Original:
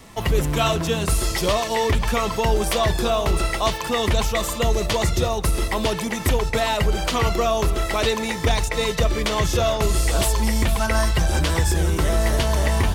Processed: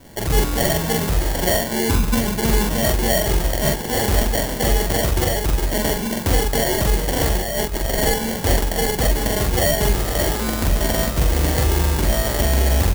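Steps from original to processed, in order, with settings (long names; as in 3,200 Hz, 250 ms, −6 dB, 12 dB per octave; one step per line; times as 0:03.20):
0:01.59–0:02.84: octave-band graphic EQ 250/500/2,000 Hz +9/−6/−12 dB
decimation without filtering 35×
0:07.33–0:07.90: compressor whose output falls as the input rises −23 dBFS, ratio −0.5
high-shelf EQ 5,600 Hz +11 dB
double-tracking delay 44 ms −2 dB
level −1 dB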